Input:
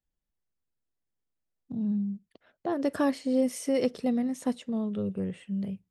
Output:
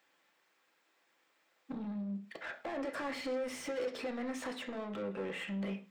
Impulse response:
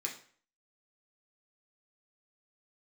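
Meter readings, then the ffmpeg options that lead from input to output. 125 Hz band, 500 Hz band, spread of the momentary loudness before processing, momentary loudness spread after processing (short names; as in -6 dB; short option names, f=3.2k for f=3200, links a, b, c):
-9.0 dB, -7.5 dB, 8 LU, 5 LU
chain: -filter_complex "[0:a]highpass=f=870:p=1,equalizer=f=10k:t=o:w=1.3:g=-9,alimiter=level_in=8dB:limit=-24dB:level=0:latency=1:release=15,volume=-8dB,acompressor=threshold=-54dB:ratio=6,asplit=2[a][b];[b]highpass=f=720:p=1,volume=29dB,asoftclip=type=tanh:threshold=-39dB[c];[a][c]amix=inputs=2:normalize=0,lowpass=f=1.3k:p=1,volume=-6dB,asplit=2[d][e];[1:a]atrim=start_sample=2205,atrim=end_sample=6615[f];[e][f]afir=irnorm=-1:irlink=0,volume=0dB[g];[d][g]amix=inputs=2:normalize=0,volume=5.5dB"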